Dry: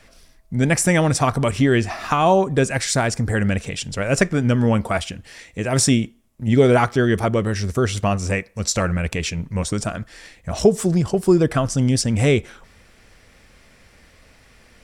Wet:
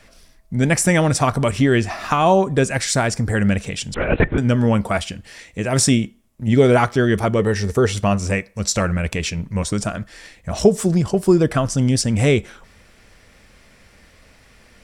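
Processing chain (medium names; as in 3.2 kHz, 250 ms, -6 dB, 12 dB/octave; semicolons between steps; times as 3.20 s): feedback comb 200 Hz, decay 0.24 s, harmonics odd, mix 40%; 3.94–4.38 s: LPC vocoder at 8 kHz whisper; 7.39–7.93 s: small resonant body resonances 450/840/1800 Hz, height 10 dB; trim +5 dB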